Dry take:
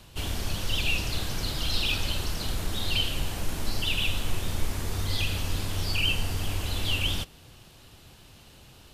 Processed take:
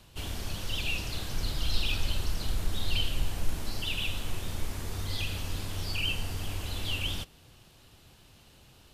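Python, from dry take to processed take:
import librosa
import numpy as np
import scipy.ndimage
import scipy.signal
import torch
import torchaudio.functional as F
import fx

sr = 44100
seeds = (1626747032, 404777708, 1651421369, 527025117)

y = fx.low_shelf(x, sr, hz=74.0, db=8.0, at=(1.33, 3.59))
y = y * 10.0 ** (-5.0 / 20.0)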